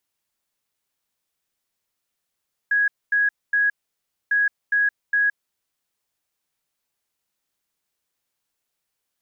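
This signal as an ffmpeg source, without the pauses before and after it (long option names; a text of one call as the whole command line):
ffmpeg -f lavfi -i "aevalsrc='0.158*sin(2*PI*1660*t)*clip(min(mod(mod(t,1.6),0.41),0.17-mod(mod(t,1.6),0.41))/0.005,0,1)*lt(mod(t,1.6),1.23)':duration=3.2:sample_rate=44100" out.wav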